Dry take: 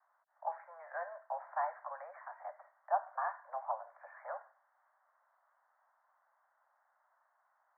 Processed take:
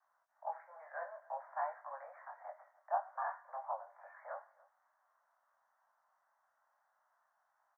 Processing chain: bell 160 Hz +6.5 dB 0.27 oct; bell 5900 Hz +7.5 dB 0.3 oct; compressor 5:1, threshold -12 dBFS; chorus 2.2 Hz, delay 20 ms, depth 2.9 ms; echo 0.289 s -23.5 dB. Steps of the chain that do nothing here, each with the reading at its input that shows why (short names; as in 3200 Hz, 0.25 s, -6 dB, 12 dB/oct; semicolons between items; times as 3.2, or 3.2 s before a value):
bell 160 Hz: input band starts at 480 Hz; bell 5900 Hz: input band ends at 1900 Hz; compressor, threshold -12 dBFS: input peak -19.0 dBFS